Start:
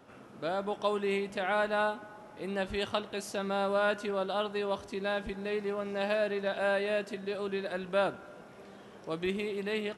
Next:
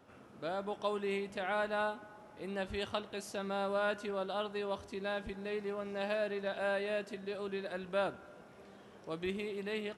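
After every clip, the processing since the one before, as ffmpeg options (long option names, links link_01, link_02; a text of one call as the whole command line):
ffmpeg -i in.wav -af "equalizer=frequency=82:width=3.7:gain=7.5,volume=-5dB" out.wav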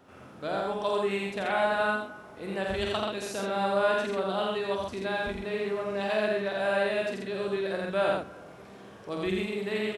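ffmpeg -i in.wav -af "aecho=1:1:46.65|84.55|131.2:0.562|0.794|0.631,volume=4.5dB" out.wav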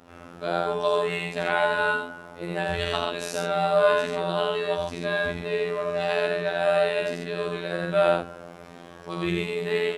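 ffmpeg -i in.wav -af "afftfilt=real='hypot(re,im)*cos(PI*b)':imag='0':win_size=2048:overlap=0.75,volume=7.5dB" out.wav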